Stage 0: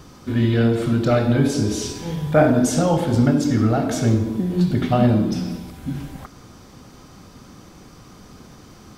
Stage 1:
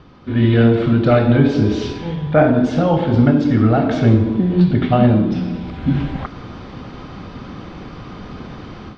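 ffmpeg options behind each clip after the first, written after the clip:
-af "lowpass=f=3.7k:w=0.5412,lowpass=f=3.7k:w=1.3066,dynaudnorm=f=240:g=3:m=12.5dB,volume=-1dB"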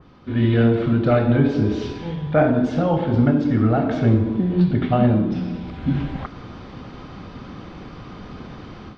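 -af "adynamicequalizer=threshold=0.02:dfrequency=2600:dqfactor=0.7:tfrequency=2600:tqfactor=0.7:attack=5:release=100:ratio=0.375:range=2.5:mode=cutabove:tftype=highshelf,volume=-4dB"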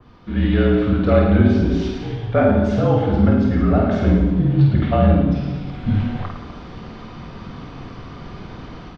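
-af "aecho=1:1:50|107.5|173.6|249.7|337.1:0.631|0.398|0.251|0.158|0.1,afreqshift=-39"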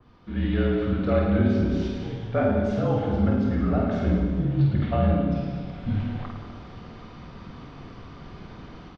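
-af "aecho=1:1:201|402|603|804|1005:0.266|0.136|0.0692|0.0353|0.018,aresample=22050,aresample=44100,volume=-7.5dB"

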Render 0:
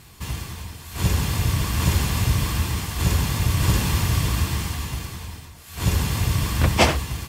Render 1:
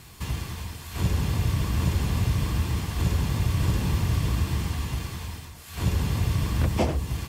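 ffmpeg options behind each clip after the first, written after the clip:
-filter_complex "[0:a]acrossover=split=690|5200[a][b][c];[a]acompressor=threshold=-20dB:ratio=4[d];[b]acompressor=threshold=-39dB:ratio=4[e];[c]acompressor=threshold=-46dB:ratio=4[f];[d][e][f]amix=inputs=3:normalize=0"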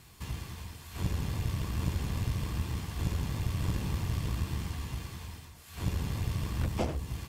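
-af "aeval=exprs='0.282*(cos(1*acos(clip(val(0)/0.282,-1,1)))-cos(1*PI/2))+0.0794*(cos(2*acos(clip(val(0)/0.282,-1,1)))-cos(2*PI/2))':c=same,volume=-8dB"

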